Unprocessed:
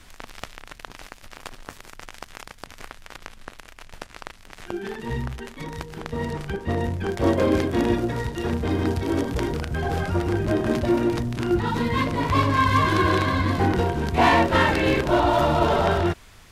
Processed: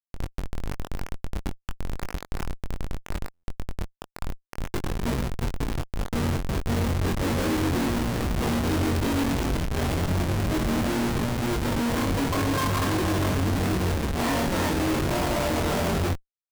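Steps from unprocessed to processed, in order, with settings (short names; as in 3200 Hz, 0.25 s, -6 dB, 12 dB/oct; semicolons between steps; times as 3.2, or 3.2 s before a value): in parallel at +3 dB: compressor 8:1, threshold -31 dBFS, peak gain reduction 17.5 dB; 8.42–10.06 on the sum: resonant high shelf 2400 Hz +8.5 dB, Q 3; limiter -11 dBFS, peak gain reduction 11 dB; on a send at -9.5 dB: reverb RT60 0.40 s, pre-delay 4 ms; on the sum: Schmitt trigger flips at -20.5 dBFS; doubler 22 ms -6 dB; stuck buffer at 3.33, samples 512, times 8; gain -4 dB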